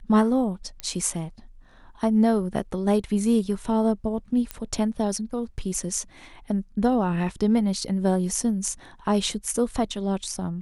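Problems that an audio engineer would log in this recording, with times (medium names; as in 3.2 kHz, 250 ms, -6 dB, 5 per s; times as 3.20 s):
0.80 s: pop -15 dBFS
4.51 s: pop -13 dBFS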